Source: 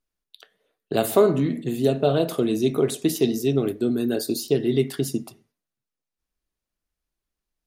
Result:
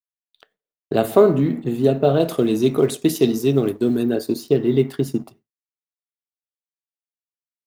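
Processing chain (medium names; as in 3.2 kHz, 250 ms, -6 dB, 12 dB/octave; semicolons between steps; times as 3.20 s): companding laws mixed up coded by A; gate with hold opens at -39 dBFS; peaking EQ 10 kHz -10 dB 2.9 oct, from 2.20 s -2.5 dB, from 4.03 s -10.5 dB; trim +4.5 dB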